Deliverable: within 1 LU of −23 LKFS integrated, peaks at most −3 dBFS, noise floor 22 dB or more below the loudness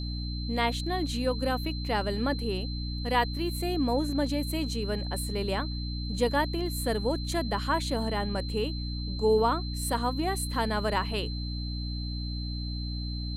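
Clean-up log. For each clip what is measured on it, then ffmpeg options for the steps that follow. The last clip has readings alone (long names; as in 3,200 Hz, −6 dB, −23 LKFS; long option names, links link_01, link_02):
mains hum 60 Hz; hum harmonics up to 300 Hz; level of the hum −31 dBFS; interfering tone 4,100 Hz; level of the tone −40 dBFS; integrated loudness −30.0 LKFS; sample peak −12.5 dBFS; target loudness −23.0 LKFS
→ -af "bandreject=frequency=60:width_type=h:width=6,bandreject=frequency=120:width_type=h:width=6,bandreject=frequency=180:width_type=h:width=6,bandreject=frequency=240:width_type=h:width=6,bandreject=frequency=300:width_type=h:width=6"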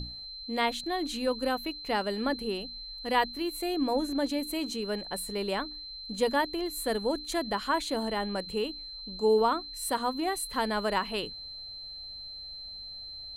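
mains hum none found; interfering tone 4,100 Hz; level of the tone −40 dBFS
→ -af "bandreject=frequency=4100:width=30"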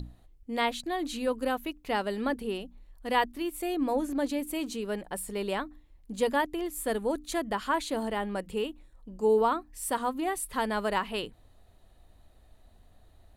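interfering tone none found; integrated loudness −31.0 LKFS; sample peak −12.5 dBFS; target loudness −23.0 LKFS
→ -af "volume=8dB"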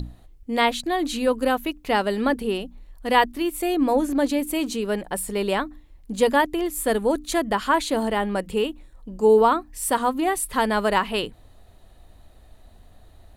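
integrated loudness −23.0 LKFS; sample peak −4.5 dBFS; background noise floor −51 dBFS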